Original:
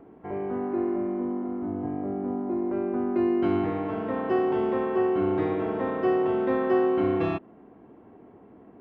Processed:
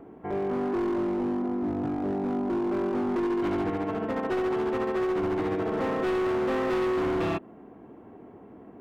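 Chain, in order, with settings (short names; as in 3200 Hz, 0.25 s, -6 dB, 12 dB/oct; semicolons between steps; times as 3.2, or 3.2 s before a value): 3.18–5.72 tremolo 14 Hz, depth 47%; hard clip -27.5 dBFS, distortion -8 dB; gain +3 dB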